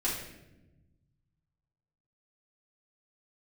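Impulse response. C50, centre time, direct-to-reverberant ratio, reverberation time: 3.0 dB, 49 ms, -8.5 dB, 1.0 s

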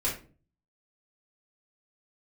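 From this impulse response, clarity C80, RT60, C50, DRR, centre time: 13.0 dB, 0.40 s, 7.0 dB, -7.0 dB, 27 ms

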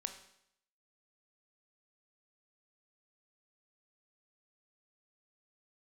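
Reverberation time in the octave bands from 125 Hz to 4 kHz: 0.70, 0.75, 0.70, 0.70, 0.70, 0.70 s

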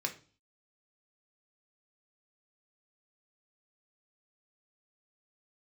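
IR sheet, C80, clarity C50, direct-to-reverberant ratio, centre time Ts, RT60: 19.0 dB, 13.0 dB, 3.5 dB, 10 ms, 0.40 s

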